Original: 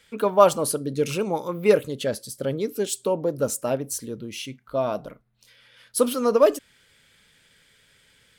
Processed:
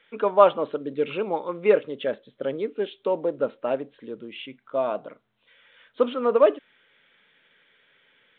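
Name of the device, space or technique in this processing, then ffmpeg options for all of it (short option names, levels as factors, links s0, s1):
telephone: -af "highpass=290,lowpass=3200" -ar 8000 -c:a pcm_mulaw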